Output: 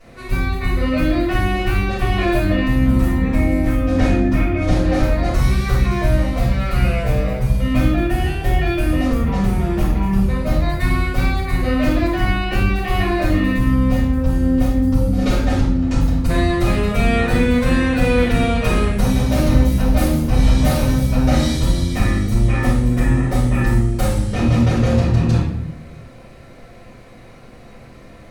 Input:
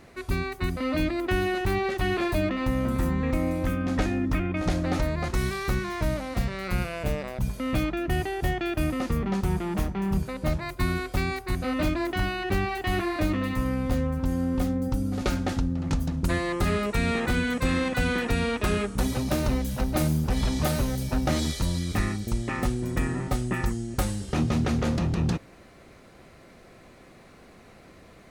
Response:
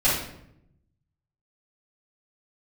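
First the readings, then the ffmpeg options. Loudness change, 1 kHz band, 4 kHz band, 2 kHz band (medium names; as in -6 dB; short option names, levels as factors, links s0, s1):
+9.5 dB, +7.0 dB, +6.0 dB, +7.0 dB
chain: -filter_complex "[1:a]atrim=start_sample=2205,asetrate=39249,aresample=44100[s0];[0:a][s0]afir=irnorm=-1:irlink=0,volume=0.355"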